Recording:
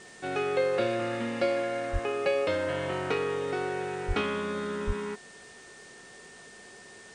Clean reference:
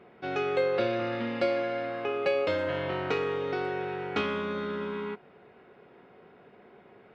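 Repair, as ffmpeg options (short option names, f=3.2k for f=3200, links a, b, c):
-filter_complex "[0:a]adeclick=t=4,bandreject=f=1.8k:w=30,asplit=3[a][b][c];[a]afade=t=out:st=1.92:d=0.02[d];[b]highpass=f=140:w=0.5412,highpass=f=140:w=1.3066,afade=t=in:st=1.92:d=0.02,afade=t=out:st=2.04:d=0.02[e];[c]afade=t=in:st=2.04:d=0.02[f];[d][e][f]amix=inputs=3:normalize=0,asplit=3[g][h][i];[g]afade=t=out:st=4.07:d=0.02[j];[h]highpass=f=140:w=0.5412,highpass=f=140:w=1.3066,afade=t=in:st=4.07:d=0.02,afade=t=out:st=4.19:d=0.02[k];[i]afade=t=in:st=4.19:d=0.02[l];[j][k][l]amix=inputs=3:normalize=0,asplit=3[m][n][o];[m]afade=t=out:st=4.86:d=0.02[p];[n]highpass=f=140:w=0.5412,highpass=f=140:w=1.3066,afade=t=in:st=4.86:d=0.02,afade=t=out:st=4.98:d=0.02[q];[o]afade=t=in:st=4.98:d=0.02[r];[p][q][r]amix=inputs=3:normalize=0,afwtdn=0.0028"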